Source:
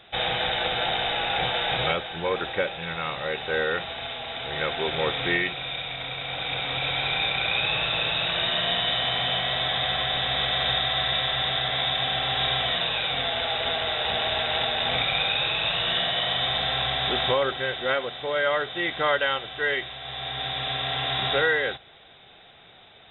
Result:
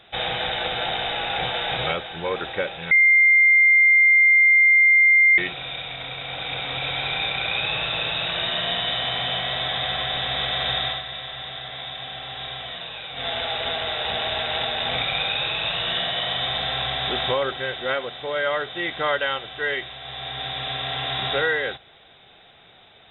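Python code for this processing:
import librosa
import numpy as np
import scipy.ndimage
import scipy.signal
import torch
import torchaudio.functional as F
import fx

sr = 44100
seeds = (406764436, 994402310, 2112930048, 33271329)

y = fx.edit(x, sr, fx.bleep(start_s=2.91, length_s=2.47, hz=2100.0, db=-11.5),
    fx.fade_down_up(start_s=10.88, length_s=2.4, db=-8.5, fade_s=0.14), tone=tone)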